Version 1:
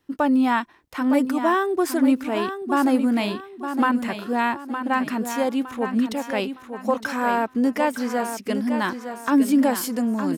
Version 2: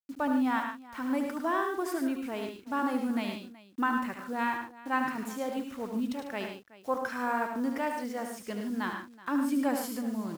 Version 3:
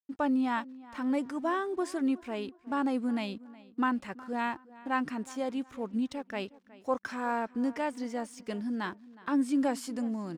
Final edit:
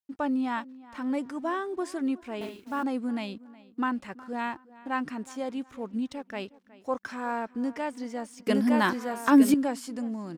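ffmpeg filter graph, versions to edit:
-filter_complex "[2:a]asplit=3[a][b][c];[a]atrim=end=2.412[d];[1:a]atrim=start=2.408:end=2.832[e];[b]atrim=start=2.828:end=8.472[f];[0:a]atrim=start=8.468:end=9.542[g];[c]atrim=start=9.538[h];[d][e]acrossfade=d=0.004:c1=hsin:c2=hsin[i];[i][f]acrossfade=d=0.004:c1=hsin:c2=hsin[j];[j][g]acrossfade=d=0.004:c1=hsin:c2=hsin[k];[k][h]acrossfade=d=0.004:c1=hsin:c2=hsin"

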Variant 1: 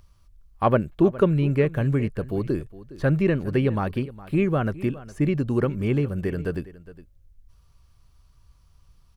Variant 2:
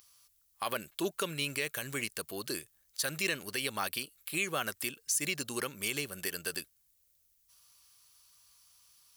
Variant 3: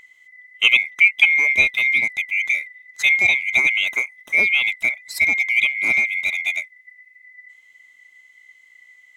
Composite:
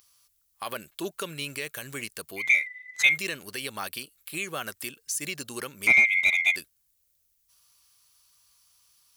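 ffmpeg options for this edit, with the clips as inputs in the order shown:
-filter_complex "[2:a]asplit=2[a][b];[1:a]asplit=3[c][d][e];[c]atrim=end=2.52[f];[a]atrim=start=2.36:end=3.18[g];[d]atrim=start=3.02:end=5.872[h];[b]atrim=start=5.868:end=6.562[i];[e]atrim=start=6.558[j];[f][g]acrossfade=d=0.16:c1=tri:c2=tri[k];[k][h]acrossfade=d=0.16:c1=tri:c2=tri[l];[l][i]acrossfade=d=0.004:c1=hsin:c2=hsin[m];[m][j]acrossfade=d=0.004:c1=hsin:c2=hsin"

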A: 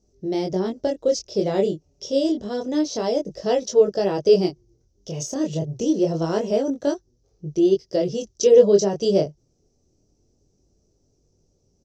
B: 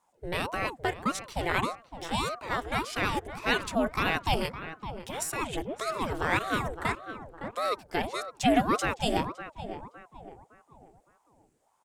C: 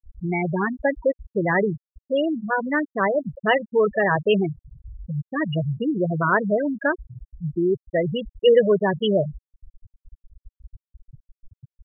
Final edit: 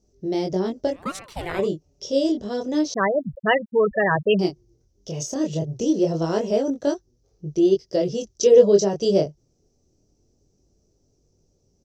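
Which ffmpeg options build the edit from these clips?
-filter_complex "[0:a]asplit=3[a][b][c];[a]atrim=end=1.1[d];[1:a]atrim=start=0.86:end=1.69[e];[b]atrim=start=1.45:end=2.942[f];[2:a]atrim=start=2.938:end=4.392[g];[c]atrim=start=4.388[h];[d][e]acrossfade=d=0.24:c1=tri:c2=tri[i];[i][f]acrossfade=d=0.24:c1=tri:c2=tri[j];[j][g]acrossfade=d=0.004:c1=hsin:c2=hsin[k];[k][h]acrossfade=d=0.004:c1=hsin:c2=hsin"

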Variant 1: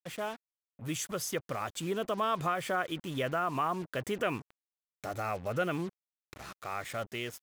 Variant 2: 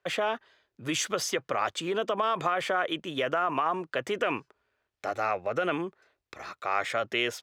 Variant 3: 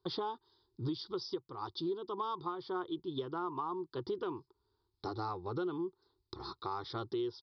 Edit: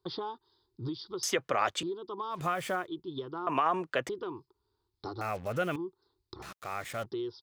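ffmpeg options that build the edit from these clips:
-filter_complex "[1:a]asplit=2[a][b];[0:a]asplit=3[c][d][e];[2:a]asplit=6[f][g][h][i][j][k];[f]atrim=end=1.232[l];[a]atrim=start=1.228:end=1.832[m];[g]atrim=start=1.828:end=2.45[n];[c]atrim=start=2.29:end=2.89[o];[h]atrim=start=2.73:end=3.472[p];[b]atrim=start=3.468:end=4.092[q];[i]atrim=start=4.088:end=5.212[r];[d]atrim=start=5.208:end=5.762[s];[j]atrim=start=5.758:end=6.422[t];[e]atrim=start=6.418:end=7.062[u];[k]atrim=start=7.058[v];[l][m]acrossfade=d=0.004:c1=hsin:c2=hsin[w];[w][n]acrossfade=d=0.004:c1=hsin:c2=hsin[x];[x][o]acrossfade=d=0.16:c1=tri:c2=tri[y];[y][p]acrossfade=d=0.16:c1=tri:c2=tri[z];[z][q]acrossfade=d=0.004:c1=hsin:c2=hsin[aa];[aa][r]acrossfade=d=0.004:c1=hsin:c2=hsin[ab];[ab][s]acrossfade=d=0.004:c1=hsin:c2=hsin[ac];[ac][t]acrossfade=d=0.004:c1=hsin:c2=hsin[ad];[ad][u]acrossfade=d=0.004:c1=hsin:c2=hsin[ae];[ae][v]acrossfade=d=0.004:c1=hsin:c2=hsin"

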